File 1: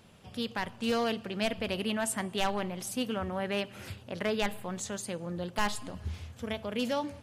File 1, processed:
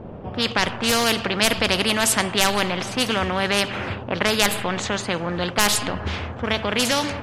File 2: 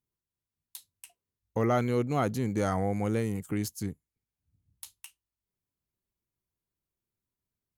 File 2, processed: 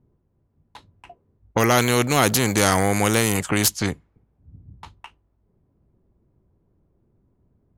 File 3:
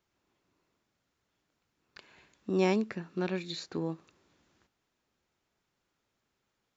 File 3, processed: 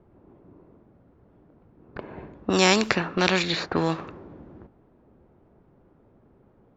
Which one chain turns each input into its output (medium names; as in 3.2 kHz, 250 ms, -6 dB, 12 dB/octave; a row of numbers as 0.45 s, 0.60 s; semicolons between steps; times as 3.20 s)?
level-controlled noise filter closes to 550 Hz, open at -26 dBFS; spectrum-flattening compressor 2:1; peak normalisation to -2 dBFS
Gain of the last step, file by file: +19.5 dB, +12.5 dB, +12.0 dB